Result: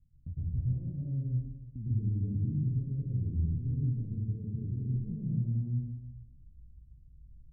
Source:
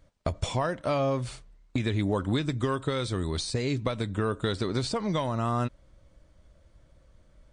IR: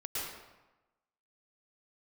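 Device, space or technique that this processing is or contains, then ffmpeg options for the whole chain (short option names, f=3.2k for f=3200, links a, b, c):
club heard from the street: -filter_complex "[0:a]alimiter=limit=-20.5dB:level=0:latency=1:release=76,lowpass=f=190:w=0.5412,lowpass=f=190:w=1.3066[a];[1:a]atrim=start_sample=2205[b];[a][b]afir=irnorm=-1:irlink=0"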